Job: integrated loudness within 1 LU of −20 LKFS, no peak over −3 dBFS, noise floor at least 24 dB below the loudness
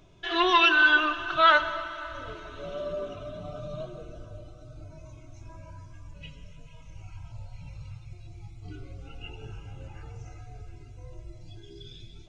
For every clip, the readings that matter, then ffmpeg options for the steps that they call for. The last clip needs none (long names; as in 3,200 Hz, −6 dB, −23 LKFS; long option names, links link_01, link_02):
integrated loudness −23.5 LKFS; sample peak −8.5 dBFS; target loudness −20.0 LKFS
→ -af "volume=3.5dB"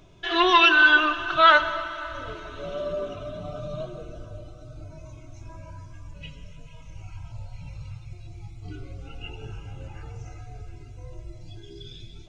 integrated loudness −20.0 LKFS; sample peak −5.0 dBFS; background noise floor −45 dBFS